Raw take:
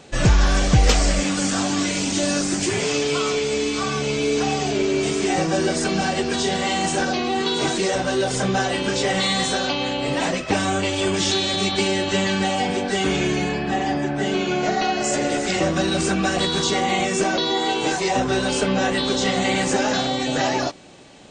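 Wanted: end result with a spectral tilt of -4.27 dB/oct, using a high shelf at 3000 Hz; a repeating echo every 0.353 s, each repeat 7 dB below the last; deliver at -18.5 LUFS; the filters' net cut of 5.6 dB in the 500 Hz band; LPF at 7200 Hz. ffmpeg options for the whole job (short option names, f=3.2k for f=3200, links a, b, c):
-af "lowpass=7.2k,equalizer=f=500:t=o:g=-7.5,highshelf=f=3k:g=-3.5,aecho=1:1:353|706|1059|1412|1765:0.447|0.201|0.0905|0.0407|0.0183,volume=4dB"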